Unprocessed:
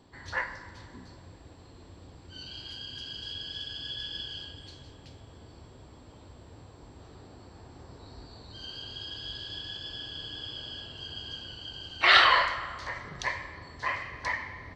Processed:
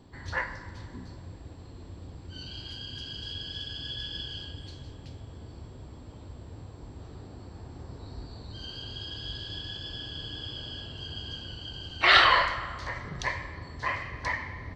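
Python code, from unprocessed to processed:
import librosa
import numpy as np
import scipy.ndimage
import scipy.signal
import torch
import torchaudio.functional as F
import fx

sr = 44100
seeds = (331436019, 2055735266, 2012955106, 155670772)

y = fx.low_shelf(x, sr, hz=300.0, db=8.0)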